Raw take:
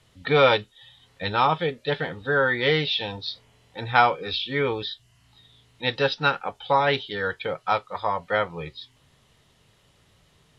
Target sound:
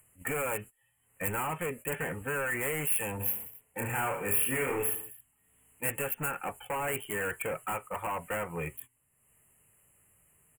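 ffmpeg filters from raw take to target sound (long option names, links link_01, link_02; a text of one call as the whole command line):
ffmpeg -i in.wav -filter_complex "[0:a]acompressor=threshold=-23dB:ratio=12,highshelf=frequency=5000:gain=10,volume=30.5dB,asoftclip=hard,volume=-30.5dB,asuperstop=centerf=4600:order=12:qfactor=0.99,aemphasis=mode=production:type=50fm,agate=range=-19dB:threshold=-45dB:ratio=16:detection=peak,acompressor=mode=upward:threshold=-56dB:ratio=2.5,asplit=3[link_01][link_02][link_03];[link_01]afade=type=out:start_time=3.19:duration=0.02[link_04];[link_02]aecho=1:1:30|69|119.7|185.6|271.3:0.631|0.398|0.251|0.158|0.1,afade=type=in:start_time=3.19:duration=0.02,afade=type=out:start_time=5.89:duration=0.02[link_05];[link_03]afade=type=in:start_time=5.89:duration=0.02[link_06];[link_04][link_05][link_06]amix=inputs=3:normalize=0" out.wav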